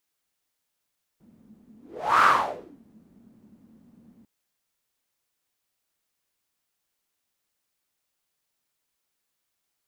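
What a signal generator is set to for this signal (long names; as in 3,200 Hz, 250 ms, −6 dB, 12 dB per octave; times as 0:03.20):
pass-by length 3.05 s, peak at 0:01.03, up 0.48 s, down 0.64 s, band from 220 Hz, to 1,300 Hz, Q 6.8, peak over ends 37.5 dB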